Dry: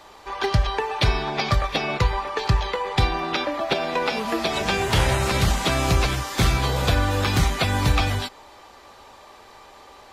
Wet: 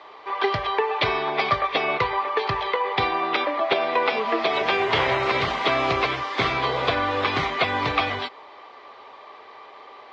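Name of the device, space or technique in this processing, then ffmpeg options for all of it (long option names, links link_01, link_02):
kitchen radio: -af "highpass=180,equalizer=frequency=190:width_type=q:width=4:gain=-9,equalizer=frequency=430:width_type=q:width=4:gain=7,equalizer=frequency=680:width_type=q:width=4:gain=5,equalizer=frequency=1100:width_type=q:width=4:gain=9,equalizer=frequency=2100:width_type=q:width=4:gain=8,equalizer=frequency=3200:width_type=q:width=4:gain=3,lowpass=frequency=4400:width=0.5412,lowpass=frequency=4400:width=1.3066,volume=-2.5dB"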